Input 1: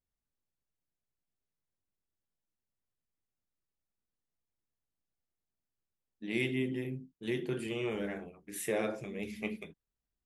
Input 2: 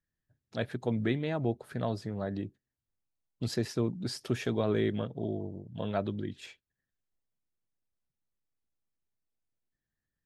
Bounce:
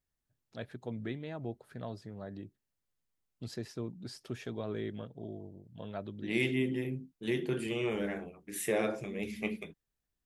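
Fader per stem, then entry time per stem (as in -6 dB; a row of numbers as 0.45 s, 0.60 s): +2.0 dB, -9.0 dB; 0.00 s, 0.00 s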